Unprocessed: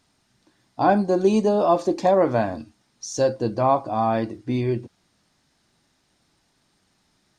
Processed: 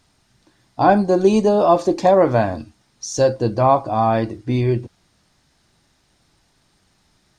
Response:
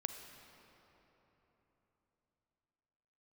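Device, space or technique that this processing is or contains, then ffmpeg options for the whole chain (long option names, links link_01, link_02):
low shelf boost with a cut just above: -af "lowshelf=frequency=99:gain=8,equalizer=frequency=240:width_type=o:width=0.83:gain=-3,volume=4.5dB"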